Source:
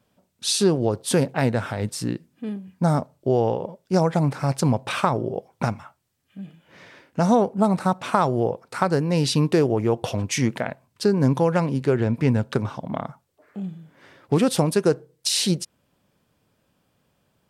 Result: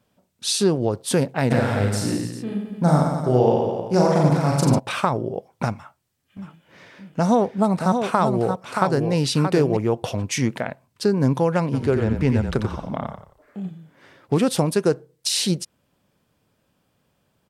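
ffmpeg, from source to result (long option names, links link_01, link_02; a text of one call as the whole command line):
ffmpeg -i in.wav -filter_complex "[0:a]asplit=3[link_01][link_02][link_03];[link_01]afade=type=out:start_time=1.5:duration=0.02[link_04];[link_02]aecho=1:1:40|88|145.6|214.7|297.7|397.2:0.794|0.631|0.501|0.398|0.316|0.251,afade=type=in:start_time=1.5:duration=0.02,afade=type=out:start_time=4.78:duration=0.02[link_05];[link_03]afade=type=in:start_time=4.78:duration=0.02[link_06];[link_04][link_05][link_06]amix=inputs=3:normalize=0,asettb=1/sr,asplit=3[link_07][link_08][link_09];[link_07]atrim=end=5.744[link_10];[link_08]atrim=start=5.74:end=9.77,asetpts=PTS-STARTPTS,afade=type=in:duration=0.004:curve=qsin,afade=type=out:start_time=4.026:duration=0.004:curve=qsin,aecho=1:1:626:0.501,atrim=end_sample=177723[link_11];[link_09]atrim=start=9.766[link_12];[link_10][link_11]acrossfade=duration=0.004:curve1=hsin:curve2=qsin[link_13];[link_13][link_12]acrossfade=duration=0.004:curve1=qsin:curve2=hsin,asplit=3[link_14][link_15][link_16];[link_14]afade=type=out:start_time=11.72:duration=0.02[link_17];[link_15]asplit=5[link_18][link_19][link_20][link_21][link_22];[link_19]adelay=89,afreqshift=-32,volume=-6dB[link_23];[link_20]adelay=178,afreqshift=-64,volume=-15.9dB[link_24];[link_21]adelay=267,afreqshift=-96,volume=-25.8dB[link_25];[link_22]adelay=356,afreqshift=-128,volume=-35.7dB[link_26];[link_18][link_23][link_24][link_25][link_26]amix=inputs=5:normalize=0,afade=type=in:start_time=11.72:duration=0.02,afade=type=out:start_time=13.69:duration=0.02[link_27];[link_16]afade=type=in:start_time=13.69:duration=0.02[link_28];[link_17][link_27][link_28]amix=inputs=3:normalize=0" out.wav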